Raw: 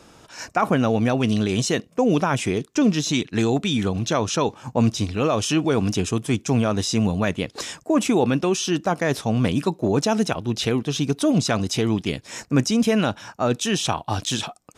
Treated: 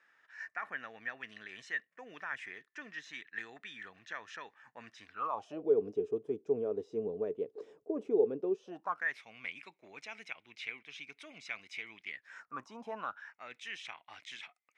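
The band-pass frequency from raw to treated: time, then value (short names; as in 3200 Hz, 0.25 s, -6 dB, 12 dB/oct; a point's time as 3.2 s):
band-pass, Q 11
5.04 s 1800 Hz
5.69 s 430 Hz
8.58 s 430 Hz
9.14 s 2200 Hz
12.03 s 2200 Hz
12.89 s 800 Hz
13.34 s 2100 Hz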